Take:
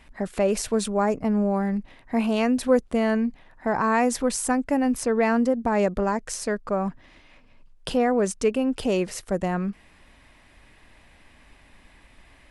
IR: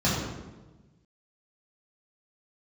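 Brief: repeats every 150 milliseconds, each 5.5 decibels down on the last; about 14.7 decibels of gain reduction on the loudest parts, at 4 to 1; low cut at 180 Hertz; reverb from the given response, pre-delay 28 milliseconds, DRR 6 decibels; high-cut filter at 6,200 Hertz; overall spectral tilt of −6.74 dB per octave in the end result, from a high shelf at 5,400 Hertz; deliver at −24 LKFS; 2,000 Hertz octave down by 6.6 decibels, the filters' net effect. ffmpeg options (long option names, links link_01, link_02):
-filter_complex "[0:a]highpass=180,lowpass=6200,equalizer=frequency=2000:width_type=o:gain=-8,highshelf=frequency=5400:gain=-4,acompressor=threshold=-33dB:ratio=4,aecho=1:1:150|300|450|600|750|900|1050:0.531|0.281|0.149|0.079|0.0419|0.0222|0.0118,asplit=2[link_01][link_02];[1:a]atrim=start_sample=2205,adelay=28[link_03];[link_02][link_03]afir=irnorm=-1:irlink=0,volume=-20dB[link_04];[link_01][link_04]amix=inputs=2:normalize=0,volume=7dB"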